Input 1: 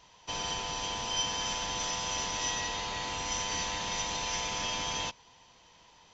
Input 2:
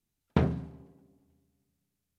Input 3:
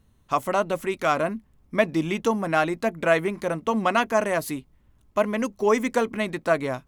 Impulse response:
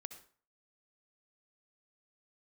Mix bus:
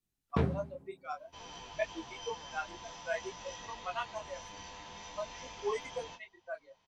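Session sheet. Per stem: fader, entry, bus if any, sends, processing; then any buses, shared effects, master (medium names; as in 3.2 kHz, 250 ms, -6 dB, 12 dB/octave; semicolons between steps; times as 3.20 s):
-10.5 dB, 1.05 s, send -6.5 dB, treble shelf 3.8 kHz -8 dB
-0.5 dB, 0.00 s, no send, none
-7.0 dB, 0.00 s, no send, expander on every frequency bin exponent 3; level-controlled noise filter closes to 820 Hz, open at -22.5 dBFS; steep high-pass 380 Hz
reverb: on, RT60 0.45 s, pre-delay 57 ms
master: detune thickener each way 19 cents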